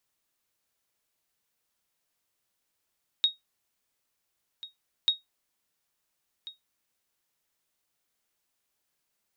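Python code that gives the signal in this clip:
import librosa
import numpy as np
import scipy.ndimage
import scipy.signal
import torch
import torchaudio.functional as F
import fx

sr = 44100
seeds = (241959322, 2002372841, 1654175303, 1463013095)

y = fx.sonar_ping(sr, hz=3760.0, decay_s=0.16, every_s=1.84, pings=2, echo_s=1.39, echo_db=-18.0, level_db=-14.5)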